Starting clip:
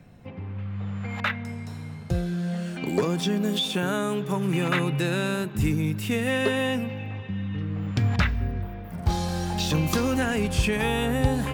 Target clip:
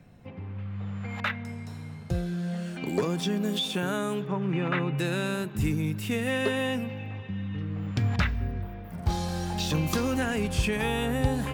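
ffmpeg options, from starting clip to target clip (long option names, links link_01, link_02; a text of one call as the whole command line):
ffmpeg -i in.wav -filter_complex "[0:a]asplit=3[link_01][link_02][link_03];[link_01]afade=type=out:start_time=4.25:duration=0.02[link_04];[link_02]lowpass=2600,afade=type=in:start_time=4.25:duration=0.02,afade=type=out:start_time=4.97:duration=0.02[link_05];[link_03]afade=type=in:start_time=4.97:duration=0.02[link_06];[link_04][link_05][link_06]amix=inputs=3:normalize=0,volume=-3dB" out.wav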